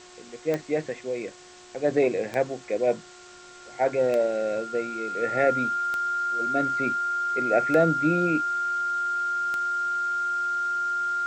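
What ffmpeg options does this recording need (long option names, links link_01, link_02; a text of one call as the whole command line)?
ffmpeg -i in.wav -af "adeclick=threshold=4,bandreject=frequency=361.1:width_type=h:width=4,bandreject=frequency=722.2:width_type=h:width=4,bandreject=frequency=1083.3:width_type=h:width=4,bandreject=frequency=1444.4:width_type=h:width=4,bandreject=frequency=1805.5:width_type=h:width=4,bandreject=frequency=1400:width=30,afwtdn=0.0045" out.wav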